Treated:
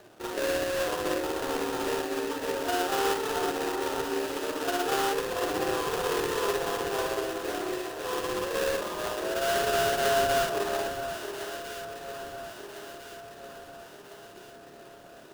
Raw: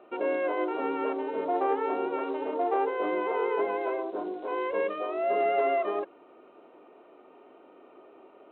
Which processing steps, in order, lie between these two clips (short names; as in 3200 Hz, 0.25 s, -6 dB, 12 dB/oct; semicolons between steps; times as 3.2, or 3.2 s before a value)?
band noise 100–740 Hz -57 dBFS; granular stretch 1.8×, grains 0.125 s; sample-rate reducer 2200 Hz, jitter 20%; echo with dull and thin repeats by turns 0.677 s, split 1400 Hz, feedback 70%, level -7 dB